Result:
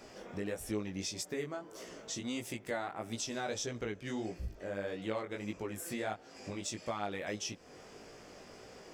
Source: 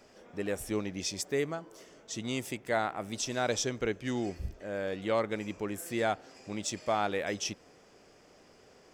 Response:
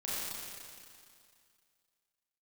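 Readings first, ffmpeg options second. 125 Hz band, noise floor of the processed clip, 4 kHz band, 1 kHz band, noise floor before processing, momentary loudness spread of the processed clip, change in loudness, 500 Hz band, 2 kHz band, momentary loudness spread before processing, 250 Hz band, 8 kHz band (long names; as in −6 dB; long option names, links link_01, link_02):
−4.0 dB, −55 dBFS, −4.5 dB, −7.5 dB, −60 dBFS, 15 LU, −5.5 dB, −6.5 dB, −6.0 dB, 10 LU, −4.0 dB, −4.0 dB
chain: -af "acompressor=threshold=-47dB:ratio=2.5,flanger=delay=17:depth=4.4:speed=1.6,volume=9dB"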